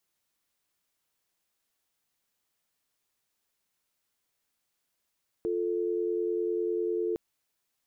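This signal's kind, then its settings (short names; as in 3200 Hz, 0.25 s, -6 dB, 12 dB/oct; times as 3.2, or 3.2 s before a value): call progress tone dial tone, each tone -29.5 dBFS 1.71 s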